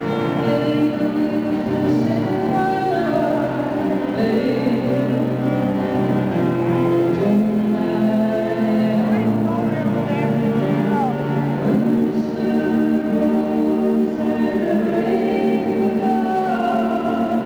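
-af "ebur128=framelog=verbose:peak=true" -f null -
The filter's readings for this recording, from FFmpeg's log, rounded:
Integrated loudness:
  I:         -18.9 LUFS
  Threshold: -28.9 LUFS
Loudness range:
  LRA:         1.3 LU
  Threshold: -38.9 LUFS
  LRA low:   -19.5 LUFS
  LRA high:  -18.2 LUFS
True peak:
  Peak:       -6.9 dBFS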